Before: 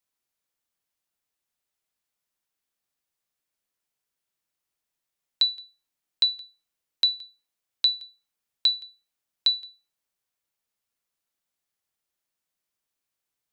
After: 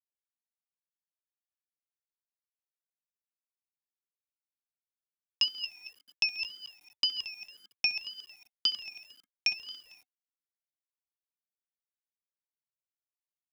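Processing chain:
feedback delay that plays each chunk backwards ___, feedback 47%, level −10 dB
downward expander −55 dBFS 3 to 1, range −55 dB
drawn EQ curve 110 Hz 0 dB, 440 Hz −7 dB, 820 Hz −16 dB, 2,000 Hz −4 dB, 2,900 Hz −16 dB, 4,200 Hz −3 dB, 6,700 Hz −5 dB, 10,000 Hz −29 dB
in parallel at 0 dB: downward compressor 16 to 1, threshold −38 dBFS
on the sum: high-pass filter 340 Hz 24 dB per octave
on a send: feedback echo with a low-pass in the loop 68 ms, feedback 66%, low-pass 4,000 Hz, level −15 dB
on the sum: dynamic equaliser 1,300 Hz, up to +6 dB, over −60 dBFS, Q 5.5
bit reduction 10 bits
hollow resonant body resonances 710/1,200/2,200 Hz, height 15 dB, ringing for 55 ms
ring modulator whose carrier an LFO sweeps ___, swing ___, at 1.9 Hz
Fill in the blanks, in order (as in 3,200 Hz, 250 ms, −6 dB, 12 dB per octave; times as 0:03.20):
113 ms, 1,200 Hz, 25%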